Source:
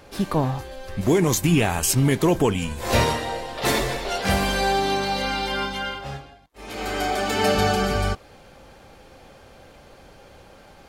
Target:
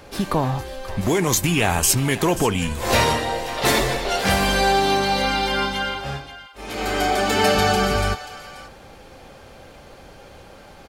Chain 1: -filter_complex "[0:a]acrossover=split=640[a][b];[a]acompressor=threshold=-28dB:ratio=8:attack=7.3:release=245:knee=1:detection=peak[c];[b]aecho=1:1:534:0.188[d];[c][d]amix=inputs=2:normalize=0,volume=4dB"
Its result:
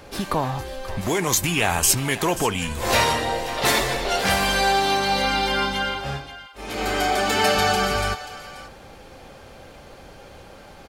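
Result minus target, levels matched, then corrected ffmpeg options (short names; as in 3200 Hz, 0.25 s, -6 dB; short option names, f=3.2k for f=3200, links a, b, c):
compressor: peak gain reduction +5 dB
-filter_complex "[0:a]acrossover=split=640[a][b];[a]acompressor=threshold=-22dB:ratio=8:attack=7.3:release=245:knee=1:detection=peak[c];[b]aecho=1:1:534:0.188[d];[c][d]amix=inputs=2:normalize=0,volume=4dB"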